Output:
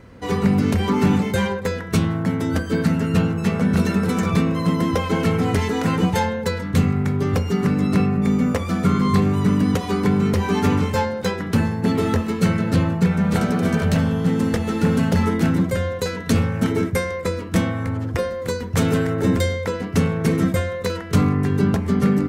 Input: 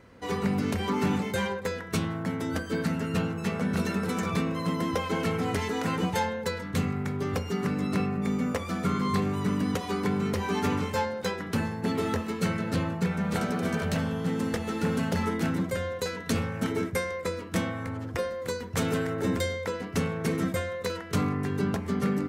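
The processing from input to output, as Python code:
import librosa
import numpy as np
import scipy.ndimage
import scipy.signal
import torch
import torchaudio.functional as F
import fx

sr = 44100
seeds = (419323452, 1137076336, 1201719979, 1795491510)

y = fx.low_shelf(x, sr, hz=240.0, db=7.5)
y = y * librosa.db_to_amplitude(5.5)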